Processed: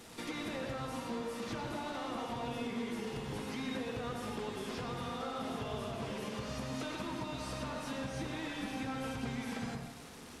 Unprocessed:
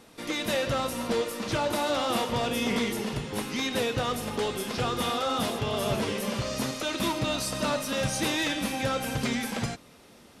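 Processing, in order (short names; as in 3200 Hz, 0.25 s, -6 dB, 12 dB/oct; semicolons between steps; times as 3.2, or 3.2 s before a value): delta modulation 64 kbps, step -44.5 dBFS; notch 570 Hz, Q 12; compressor 12:1, threshold -36 dBFS, peak gain reduction 13.5 dB; reverb RT60 0.70 s, pre-delay 88 ms, DRR 1.5 dB; gain -2.5 dB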